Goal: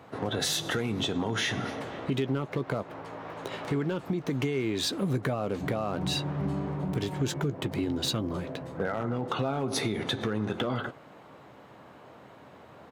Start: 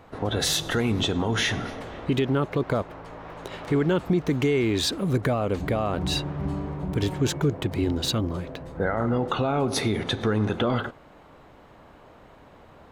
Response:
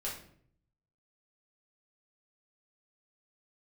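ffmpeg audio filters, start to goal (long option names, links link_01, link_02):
-filter_complex "[0:a]highpass=frequency=97:width=0.5412,highpass=frequency=97:width=1.3066,acompressor=threshold=-26dB:ratio=5,asoftclip=type=hard:threshold=-21.5dB,asplit=2[link_01][link_02];[link_02]adelay=15,volume=-12.5dB[link_03];[link_01][link_03]amix=inputs=2:normalize=0"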